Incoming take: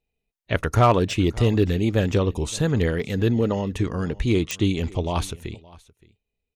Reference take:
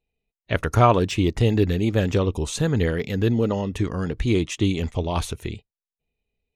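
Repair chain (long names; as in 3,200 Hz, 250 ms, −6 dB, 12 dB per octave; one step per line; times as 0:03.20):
clipped peaks rebuilt −8.5 dBFS
click removal
echo removal 570 ms −22.5 dB
level correction +3 dB, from 0:05.31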